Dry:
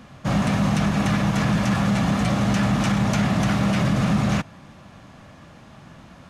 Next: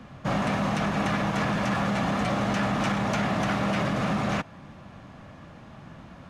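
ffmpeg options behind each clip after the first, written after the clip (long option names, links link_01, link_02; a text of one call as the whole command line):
ffmpeg -i in.wav -filter_complex "[0:a]highshelf=frequency=4200:gain=-10,acrossover=split=290|860[link_01][link_02][link_03];[link_01]acompressor=threshold=-30dB:ratio=6[link_04];[link_04][link_02][link_03]amix=inputs=3:normalize=0" out.wav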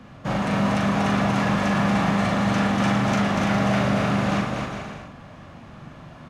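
ffmpeg -i in.wav -filter_complex "[0:a]asplit=2[link_01][link_02];[link_02]adelay=40,volume=-4.5dB[link_03];[link_01][link_03]amix=inputs=2:normalize=0,asplit=2[link_04][link_05];[link_05]aecho=0:1:240|408|525.6|607.9|665.5:0.631|0.398|0.251|0.158|0.1[link_06];[link_04][link_06]amix=inputs=2:normalize=0" out.wav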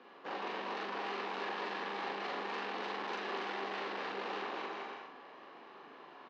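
ffmpeg -i in.wav -filter_complex "[0:a]aeval=exprs='(tanh(28.2*val(0)+0.4)-tanh(0.4))/28.2':channel_layout=same,highpass=frequency=380:width=0.5412,highpass=frequency=380:width=1.3066,equalizer=frequency=400:width_type=q:width=4:gain=8,equalizer=frequency=620:width_type=q:width=4:gain=-10,equalizer=frequency=1300:width_type=q:width=4:gain=-5,equalizer=frequency=2100:width_type=q:width=4:gain=-5,equalizer=frequency=3300:width_type=q:width=4:gain=-4,lowpass=frequency=4100:width=0.5412,lowpass=frequency=4100:width=1.3066,asplit=2[link_01][link_02];[link_02]adelay=41,volume=-5.5dB[link_03];[link_01][link_03]amix=inputs=2:normalize=0,volume=-3dB" out.wav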